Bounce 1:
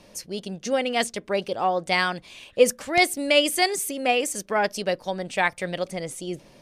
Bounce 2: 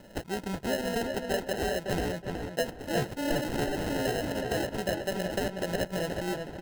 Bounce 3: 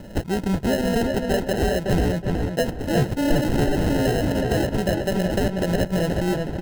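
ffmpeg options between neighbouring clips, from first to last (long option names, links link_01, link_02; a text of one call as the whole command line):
ffmpeg -i in.wav -filter_complex "[0:a]acrusher=samples=38:mix=1:aa=0.000001,acompressor=threshold=-27dB:ratio=12,asplit=2[link_01][link_02];[link_02]adelay=370,lowpass=frequency=2900:poles=1,volume=-4dB,asplit=2[link_03][link_04];[link_04]adelay=370,lowpass=frequency=2900:poles=1,volume=0.28,asplit=2[link_05][link_06];[link_06]adelay=370,lowpass=frequency=2900:poles=1,volume=0.28,asplit=2[link_07][link_08];[link_08]adelay=370,lowpass=frequency=2900:poles=1,volume=0.28[link_09];[link_01][link_03][link_05][link_07][link_09]amix=inputs=5:normalize=0" out.wav
ffmpeg -i in.wav -filter_complex "[0:a]lowshelf=frequency=300:gain=10.5,asplit=2[link_01][link_02];[link_02]alimiter=limit=-22dB:level=0:latency=1,volume=-2dB[link_03];[link_01][link_03]amix=inputs=2:normalize=0,volume=1.5dB" out.wav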